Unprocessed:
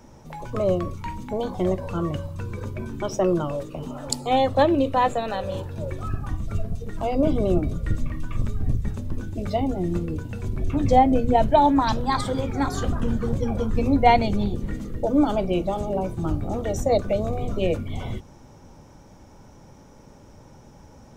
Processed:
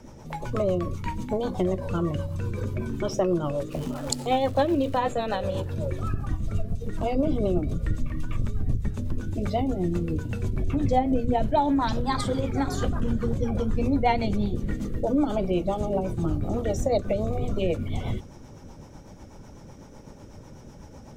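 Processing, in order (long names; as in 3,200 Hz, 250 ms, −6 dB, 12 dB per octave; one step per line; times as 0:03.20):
0:03.71–0:04.96: surface crackle 440 per second −35 dBFS
rotating-speaker cabinet horn 8 Hz
downward compressor 2 to 1, threshold −29 dBFS, peak gain reduction 9.5 dB
level +4.5 dB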